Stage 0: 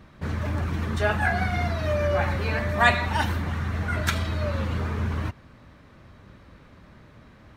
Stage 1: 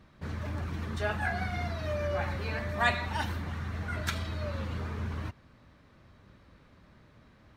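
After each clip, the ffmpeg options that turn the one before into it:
ffmpeg -i in.wav -af "equalizer=frequency=4500:width=1.5:gain=2.5,volume=-8dB" out.wav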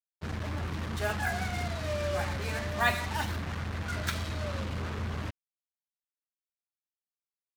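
ffmpeg -i in.wav -af "acrusher=bits=5:mix=0:aa=0.5" out.wav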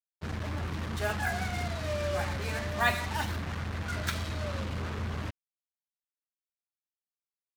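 ffmpeg -i in.wav -af anull out.wav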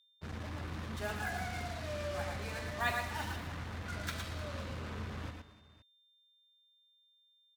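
ffmpeg -i in.wav -af "aecho=1:1:110|114|234|305|516:0.355|0.473|0.106|0.119|0.1,aeval=exprs='val(0)+0.001*sin(2*PI*3600*n/s)':channel_layout=same,volume=-7.5dB" out.wav

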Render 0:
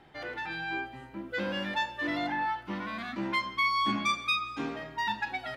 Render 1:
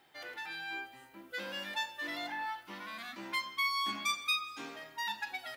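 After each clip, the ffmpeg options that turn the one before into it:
ffmpeg -i in.wav -af "aemphasis=mode=production:type=riaa,volume=-7.5dB" out.wav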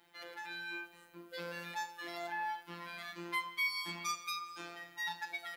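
ffmpeg -i in.wav -af "afftfilt=real='hypot(re,im)*cos(PI*b)':imag='0':win_size=1024:overlap=0.75,volume=1.5dB" out.wav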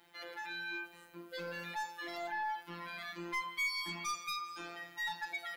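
ffmpeg -i in.wav -af "asoftclip=type=tanh:threshold=-32dB,volume=2.5dB" out.wav

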